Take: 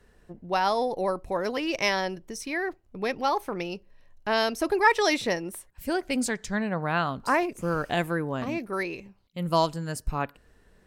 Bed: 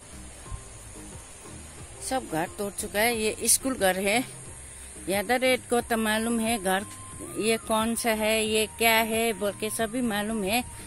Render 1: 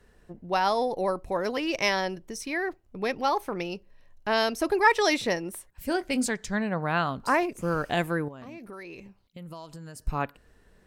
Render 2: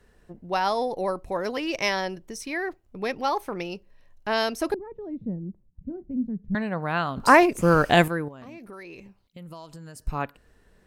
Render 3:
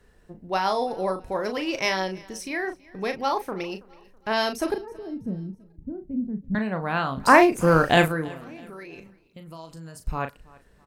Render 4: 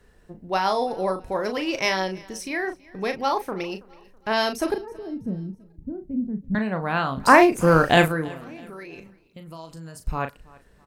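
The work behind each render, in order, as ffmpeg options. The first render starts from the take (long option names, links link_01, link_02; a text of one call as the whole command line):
ffmpeg -i in.wav -filter_complex "[0:a]asettb=1/sr,asplit=3[link_01][link_02][link_03];[link_01]atrim=end=5.864[link_04];[link_02]atrim=start=5.86:end=6.27,asetpts=PTS-STARTPTS,afade=type=in:duration=0.004:curve=qsin,afade=type=out:start_time=0.406:duration=0.004:curve=qsin,asplit=2[link_05][link_06];[link_06]adelay=23,volume=-13dB[link_07];[link_05][link_07]amix=inputs=2:normalize=0,atrim=end_sample=18081[link_08];[link_03]atrim=start=6.266[link_09];[link_04][link_08]acrossfade=duration=0.004:curve1=hsin:curve2=qsin[link_10];[link_10][link_09]acrossfade=duration=0.004:curve1=qsin:curve2=hsin,asettb=1/sr,asplit=3[link_11][link_12][link_13];[link_11]atrim=end=8.284[link_14];[link_12]atrim=start=8.28:end=10.02,asetpts=PTS-STARTPTS,afade=type=in:duration=0.004:curve=qsin,afade=type=out:start_time=1.736:duration=0.004:curve=qsin,acompressor=threshold=-38dB:ratio=10:attack=3.2:release=140:knee=1:detection=peak[link_15];[link_13]atrim=start=10.016[link_16];[link_14][link_15]acrossfade=duration=0.004:curve1=hsin:curve2=qsin[link_17];[link_17][link_16]acrossfade=duration=0.004:curve1=qsin:curve2=hsin" out.wav
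ffmpeg -i in.wav -filter_complex "[0:a]asettb=1/sr,asplit=3[link_01][link_02][link_03];[link_01]atrim=end=4.744[link_04];[link_02]atrim=start=4.74:end=6.55,asetpts=PTS-STARTPTS,afade=type=in:duration=0.004:curve=qsin,afade=type=out:start_time=1.806:duration=0.004:curve=qsin,lowpass=frequency=190:width_type=q:width=2.2[link_05];[link_03]atrim=start=6.546[link_06];[link_04][link_05]acrossfade=duration=0.004:curve1=hsin:curve2=qsin[link_07];[link_07][link_06]acrossfade=duration=0.004:curve1=qsin:curve2=hsin,asplit=3[link_08][link_09][link_10];[link_08]atrim=end=7.172[link_11];[link_09]atrim=start=7.168:end=8.082,asetpts=PTS-STARTPTS,volume=9dB[link_12];[link_10]atrim=start=8.078[link_13];[link_11][link_12]acrossfade=duration=0.004:curve1=hsin:curve2=hsin[link_14];[link_14][link_13]acrossfade=duration=0.004:curve1=hsin:curve2=hsin" out.wav
ffmpeg -i in.wav -filter_complex "[0:a]asplit=2[link_01][link_02];[link_02]adelay=37,volume=-8dB[link_03];[link_01][link_03]amix=inputs=2:normalize=0,aecho=1:1:327|654|981:0.0668|0.0274|0.0112" out.wav
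ffmpeg -i in.wav -af "volume=1.5dB,alimiter=limit=-2dB:level=0:latency=1" out.wav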